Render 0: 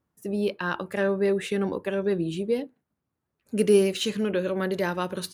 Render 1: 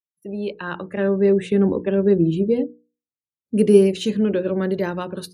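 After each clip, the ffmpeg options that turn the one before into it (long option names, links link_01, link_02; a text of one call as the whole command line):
ffmpeg -i in.wav -filter_complex "[0:a]afftdn=noise_reduction=35:noise_floor=-46,bandreject=frequency=60:width_type=h:width=6,bandreject=frequency=120:width_type=h:width=6,bandreject=frequency=180:width_type=h:width=6,bandreject=frequency=240:width_type=h:width=6,bandreject=frequency=300:width_type=h:width=6,bandreject=frequency=360:width_type=h:width=6,bandreject=frequency=420:width_type=h:width=6,bandreject=frequency=480:width_type=h:width=6,acrossover=split=460[link_01][link_02];[link_01]dynaudnorm=framelen=440:gausssize=5:maxgain=13dB[link_03];[link_03][link_02]amix=inputs=2:normalize=0,volume=-1dB" out.wav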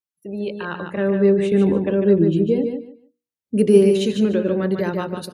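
ffmpeg -i in.wav -af "aecho=1:1:148|296|444:0.501|0.1|0.02" out.wav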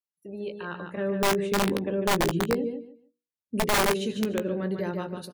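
ffmpeg -i in.wav -filter_complex "[0:a]aeval=exprs='(mod(2.82*val(0)+1,2)-1)/2.82':channel_layout=same,asplit=2[link_01][link_02];[link_02]adelay=17,volume=-11dB[link_03];[link_01][link_03]amix=inputs=2:normalize=0,volume=-8.5dB" out.wav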